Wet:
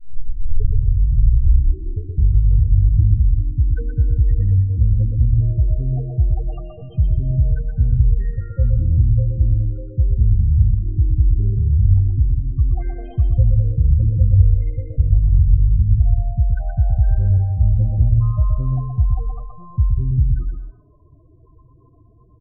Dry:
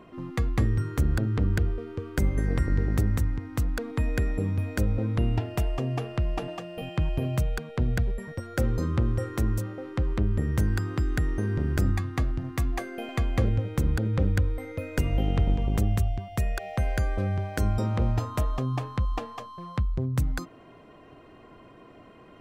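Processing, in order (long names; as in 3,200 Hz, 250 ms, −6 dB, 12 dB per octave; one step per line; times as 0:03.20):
turntable start at the beginning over 2.18 s
low shelf with overshoot 140 Hz +9 dB, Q 1.5
spectral peaks only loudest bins 8
single-tap delay 123 ms −5 dB
on a send at −11.5 dB: convolution reverb RT60 0.40 s, pre-delay 174 ms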